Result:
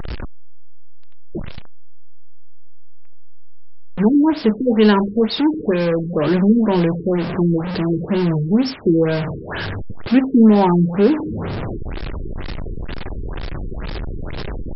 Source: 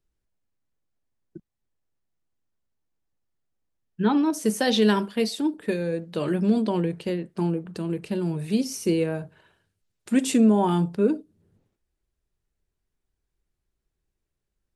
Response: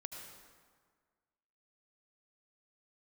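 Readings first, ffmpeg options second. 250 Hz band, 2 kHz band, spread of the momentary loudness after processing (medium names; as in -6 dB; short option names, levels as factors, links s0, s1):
+8.0 dB, +7.0 dB, 17 LU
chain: -af "aeval=exprs='val(0)+0.5*0.0531*sgn(val(0))':c=same,acrusher=bits=5:mix=0:aa=0.000001,afftfilt=real='re*lt(b*sr/1024,450*pow(5600/450,0.5+0.5*sin(2*PI*2.1*pts/sr)))':imag='im*lt(b*sr/1024,450*pow(5600/450,0.5+0.5*sin(2*PI*2.1*pts/sr)))':win_size=1024:overlap=0.75,volume=2"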